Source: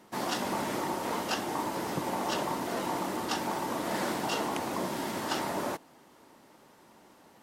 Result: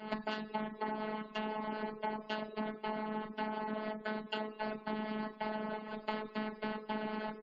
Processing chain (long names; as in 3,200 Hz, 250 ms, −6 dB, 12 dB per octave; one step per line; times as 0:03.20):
camcorder AGC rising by 75 dB per second
repeating echo 224 ms, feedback 59%, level −13.5 dB
gate pattern "x.x.x.xxx.xxxx." 111 BPM −60 dB
convolution reverb RT60 0.70 s, pre-delay 3 ms, DRR −2 dB
reverb reduction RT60 0.55 s
low-shelf EQ 230 Hz +5.5 dB
phases set to zero 215 Hz
high-shelf EQ 9,100 Hz −7 dB
gate on every frequency bin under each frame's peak −30 dB strong
downward compressor 12 to 1, threshold −31 dBFS, peak gain reduction 18.5 dB
highs frequency-modulated by the lows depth 0.12 ms
level −2.5 dB